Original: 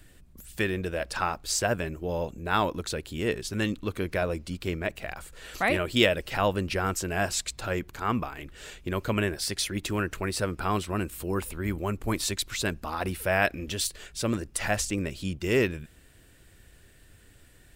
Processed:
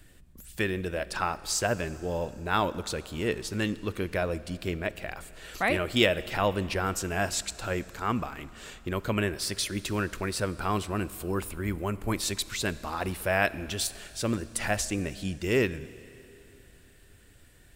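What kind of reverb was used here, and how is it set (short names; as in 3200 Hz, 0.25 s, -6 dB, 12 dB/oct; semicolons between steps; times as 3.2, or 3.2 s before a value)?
Schroeder reverb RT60 3.1 s, combs from 27 ms, DRR 16.5 dB; gain -1 dB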